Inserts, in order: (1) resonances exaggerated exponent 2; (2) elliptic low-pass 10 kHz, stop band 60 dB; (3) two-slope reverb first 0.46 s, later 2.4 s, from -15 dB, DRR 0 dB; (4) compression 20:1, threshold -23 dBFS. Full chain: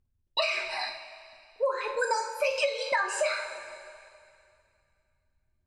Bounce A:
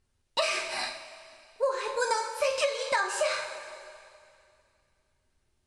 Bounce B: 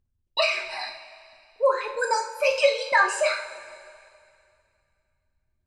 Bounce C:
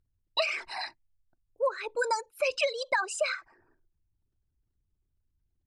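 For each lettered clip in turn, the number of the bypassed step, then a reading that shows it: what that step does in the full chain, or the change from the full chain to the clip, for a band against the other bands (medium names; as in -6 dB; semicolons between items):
1, 8 kHz band +3.0 dB; 4, mean gain reduction 2.0 dB; 3, momentary loudness spread change -8 LU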